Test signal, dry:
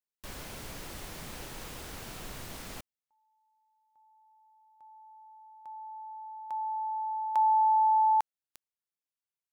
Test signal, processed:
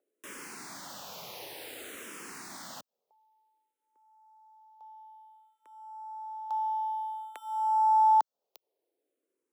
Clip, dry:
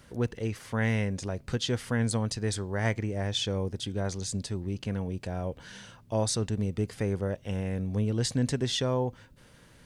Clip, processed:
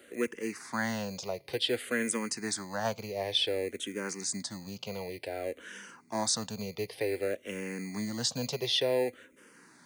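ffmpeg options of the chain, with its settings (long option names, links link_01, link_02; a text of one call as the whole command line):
ffmpeg -i in.wav -filter_complex "[0:a]acrossover=split=370|400|5200[link_01][link_02][link_03][link_04];[link_01]acrusher=samples=20:mix=1:aa=0.000001[link_05];[link_02]acompressor=mode=upward:threshold=-60dB:ratio=2.5:release=64:knee=2.83:detection=peak[link_06];[link_05][link_06][link_03][link_04]amix=inputs=4:normalize=0,highpass=290,asplit=2[link_07][link_08];[link_08]afreqshift=-0.55[link_09];[link_07][link_09]amix=inputs=2:normalize=1,volume=3.5dB" out.wav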